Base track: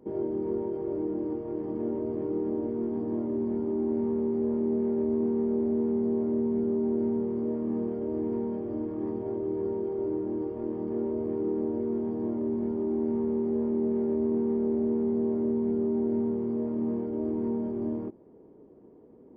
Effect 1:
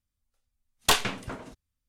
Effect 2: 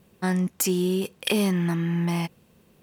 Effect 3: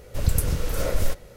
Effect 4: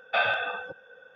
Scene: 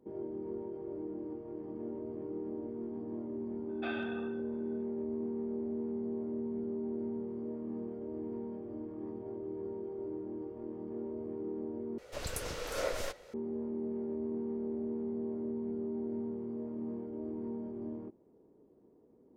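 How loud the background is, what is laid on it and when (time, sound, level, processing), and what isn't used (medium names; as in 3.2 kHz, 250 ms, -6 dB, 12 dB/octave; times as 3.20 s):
base track -10 dB
3.69 s: add 4 -17 dB + Schroeder reverb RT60 0.73 s, combs from 29 ms, DRR 12 dB
11.98 s: replace with 3 -4 dB + three-band isolator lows -18 dB, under 330 Hz, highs -13 dB, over 7.7 kHz
not used: 1, 2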